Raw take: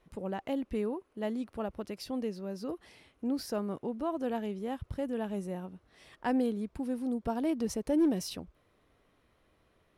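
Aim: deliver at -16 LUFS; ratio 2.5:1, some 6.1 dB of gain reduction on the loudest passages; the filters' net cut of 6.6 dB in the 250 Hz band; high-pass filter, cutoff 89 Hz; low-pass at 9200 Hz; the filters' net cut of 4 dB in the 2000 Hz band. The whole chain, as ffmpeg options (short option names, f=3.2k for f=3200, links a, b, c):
-af "highpass=89,lowpass=9.2k,equalizer=f=250:t=o:g=-8,equalizer=f=2k:t=o:g=-5,acompressor=threshold=-37dB:ratio=2.5,volume=26dB"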